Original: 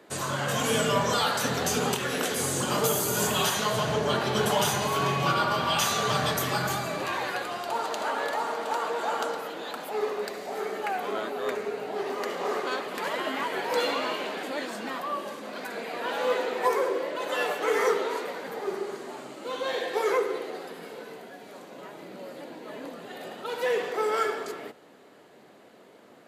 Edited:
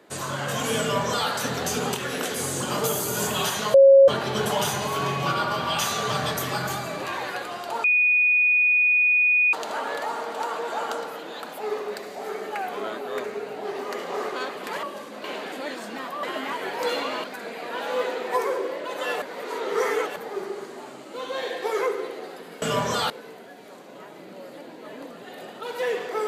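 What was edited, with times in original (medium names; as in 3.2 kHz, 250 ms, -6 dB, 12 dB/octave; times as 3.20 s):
0.81–1.29 s: copy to 20.93 s
3.74–4.08 s: bleep 546 Hz -8.5 dBFS
7.84 s: add tone 2.47 kHz -16 dBFS 1.69 s
13.14–14.15 s: swap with 15.14–15.55 s
17.53–18.47 s: reverse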